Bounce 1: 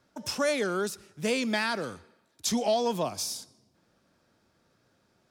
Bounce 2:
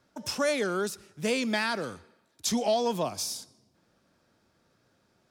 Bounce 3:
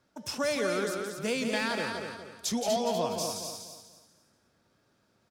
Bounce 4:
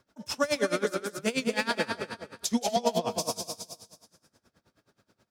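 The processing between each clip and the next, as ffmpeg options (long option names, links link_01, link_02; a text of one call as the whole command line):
ffmpeg -i in.wav -af anull out.wav
ffmpeg -i in.wav -filter_complex "[0:a]asplit=2[link_01][link_02];[link_02]aecho=0:1:243|486|729|972:0.501|0.155|0.0482|0.0149[link_03];[link_01][link_03]amix=inputs=2:normalize=0,asoftclip=type=hard:threshold=-18.5dB,asplit=2[link_04][link_05];[link_05]aecho=0:1:172:0.473[link_06];[link_04][link_06]amix=inputs=2:normalize=0,volume=-3dB" out.wav
ffmpeg -i in.wav -af "aeval=exprs='val(0)*pow(10,-22*(0.5-0.5*cos(2*PI*9.4*n/s))/20)':channel_layout=same,volume=7dB" out.wav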